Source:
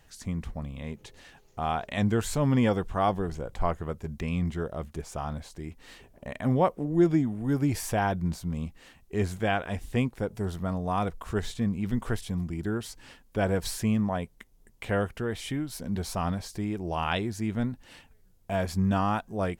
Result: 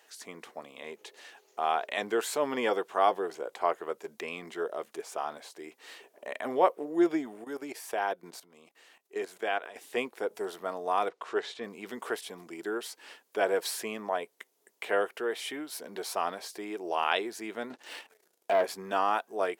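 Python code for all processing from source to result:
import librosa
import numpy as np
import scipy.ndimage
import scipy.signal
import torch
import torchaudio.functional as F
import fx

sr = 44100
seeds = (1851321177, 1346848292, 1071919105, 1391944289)

y = fx.chain(x, sr, fx.low_shelf(hz=66.0, db=-11.5),
    fx.level_steps(step_db=15), at=(7.44, 9.76))
y = fx.chain(y, sr, fx.lowpass(hz=5000.0, slope=12),
    fx.notch(hz=190.0, q=5.1), at=(11.09, 11.64))
y = fx.chain(y, sr, fx.env_lowpass_down(base_hz=1300.0, full_db=-26.5),
    fx.leveller(passes=2), at=(17.7, 18.64))
y = scipy.signal.sosfilt(scipy.signal.cheby1(3, 1.0, 400.0, 'highpass', fs=sr, output='sos'), y)
y = fx.notch(y, sr, hz=530.0, q=15.0)
y = fx.dynamic_eq(y, sr, hz=6800.0, q=1.2, threshold_db=-56.0, ratio=4.0, max_db=-4)
y = F.gain(torch.from_numpy(y), 2.5).numpy()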